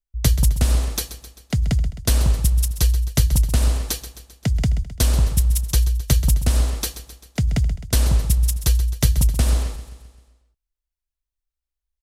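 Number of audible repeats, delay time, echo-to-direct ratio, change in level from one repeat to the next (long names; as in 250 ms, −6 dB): 5, 131 ms, −11.5 dB, −5.0 dB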